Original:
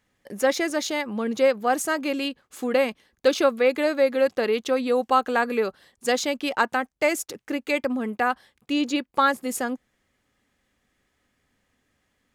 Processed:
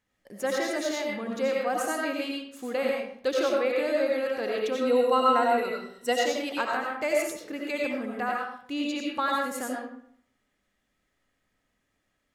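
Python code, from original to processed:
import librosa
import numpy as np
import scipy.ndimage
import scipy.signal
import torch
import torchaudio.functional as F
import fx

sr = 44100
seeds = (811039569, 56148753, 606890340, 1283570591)

y = fx.ripple_eq(x, sr, per_octave=2.0, db=15, at=(4.8, 6.12), fade=0.02)
y = fx.rev_freeverb(y, sr, rt60_s=0.63, hf_ratio=0.7, predelay_ms=50, drr_db=-2.0)
y = F.gain(torch.from_numpy(y), -8.5).numpy()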